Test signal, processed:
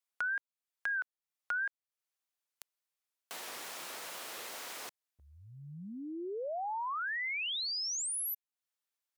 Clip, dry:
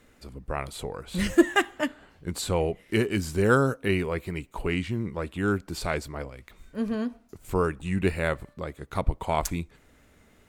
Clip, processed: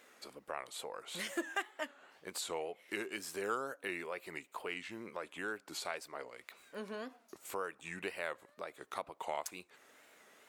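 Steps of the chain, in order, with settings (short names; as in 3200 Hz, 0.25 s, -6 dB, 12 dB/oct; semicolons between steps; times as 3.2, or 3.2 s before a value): HPF 540 Hz 12 dB/oct; compressor 2:1, threshold -46 dBFS; wow and flutter 120 cents; gain +1 dB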